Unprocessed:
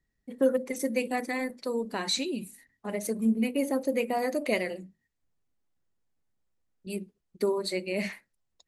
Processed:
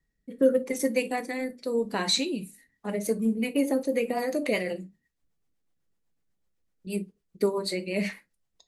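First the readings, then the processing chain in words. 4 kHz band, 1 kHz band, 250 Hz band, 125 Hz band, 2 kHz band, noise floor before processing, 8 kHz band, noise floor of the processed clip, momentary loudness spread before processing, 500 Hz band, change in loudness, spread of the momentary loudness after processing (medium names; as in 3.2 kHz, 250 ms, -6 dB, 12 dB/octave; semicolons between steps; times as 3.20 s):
+3.5 dB, 0.0 dB, +1.5 dB, no reading, +1.0 dB, -80 dBFS, +2.5 dB, -78 dBFS, 14 LU, +2.0 dB, +2.0 dB, 14 LU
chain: rotary cabinet horn 0.85 Hz, later 8 Hz, at 2.56 s; gated-style reverb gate 80 ms falling, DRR 10 dB; trim +3.5 dB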